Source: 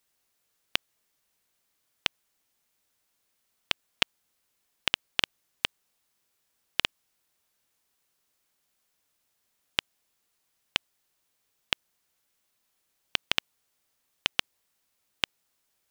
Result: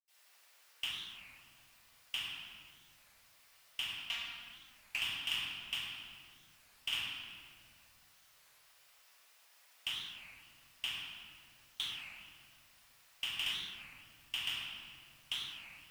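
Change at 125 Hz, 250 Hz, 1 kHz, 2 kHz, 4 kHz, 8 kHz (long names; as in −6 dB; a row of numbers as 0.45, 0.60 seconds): −9.0, −13.5, −11.5, −7.5, −6.0, −6.0 decibels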